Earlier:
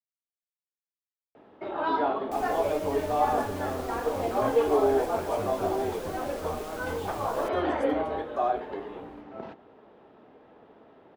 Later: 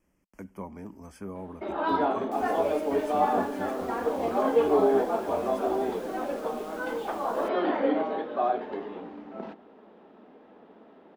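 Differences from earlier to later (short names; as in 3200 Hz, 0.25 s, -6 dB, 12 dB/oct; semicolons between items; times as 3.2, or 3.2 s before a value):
speech: entry -2.25 s; second sound -5.5 dB; master: add resonant low shelf 160 Hz -6.5 dB, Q 3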